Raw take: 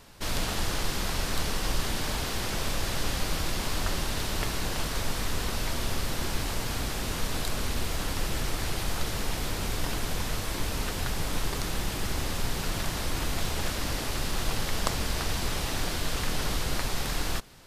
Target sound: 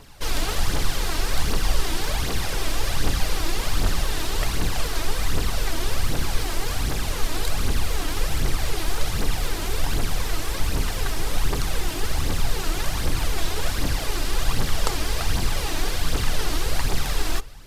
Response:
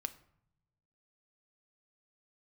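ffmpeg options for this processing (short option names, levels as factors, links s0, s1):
-filter_complex "[0:a]asplit=2[s0][s1];[1:a]atrim=start_sample=2205[s2];[s1][s2]afir=irnorm=-1:irlink=0,volume=0.841[s3];[s0][s3]amix=inputs=2:normalize=0,aphaser=in_gain=1:out_gain=1:delay=3.3:decay=0.53:speed=1.3:type=triangular,volume=0.75"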